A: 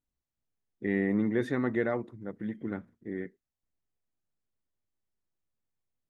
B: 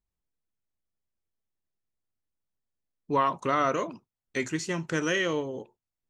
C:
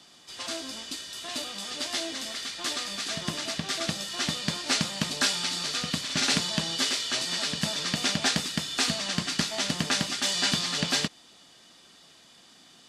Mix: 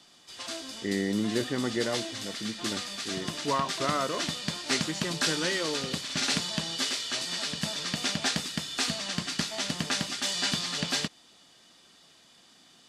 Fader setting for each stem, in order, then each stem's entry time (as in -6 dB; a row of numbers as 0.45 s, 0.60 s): -1.0 dB, -4.0 dB, -3.0 dB; 0.00 s, 0.35 s, 0.00 s